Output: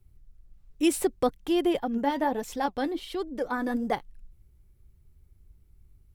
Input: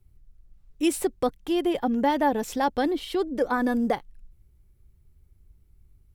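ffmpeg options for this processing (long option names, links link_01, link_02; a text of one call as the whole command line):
ffmpeg -i in.wav -filter_complex "[0:a]asettb=1/sr,asplit=3[link_01][link_02][link_03];[link_01]atrim=end=1.784[link_04];[link_02]atrim=start=1.78:end=3.92,asetpts=PTS-STARTPTS,afade=type=in:duration=0.004:curve=qsin,afade=type=out:start_time=2.136:duration=0.004:curve=qsin,flanger=delay=0.9:depth=6.6:regen=59:speed=1.4:shape=sinusoidal[link_05];[link_03]atrim=start=3.916[link_06];[link_04][link_05]acrossfade=duration=0.004:curve1=hsin:curve2=qsin[link_07];[link_07][link_06]acrossfade=duration=0.004:curve1=qsin:curve2=hsin" out.wav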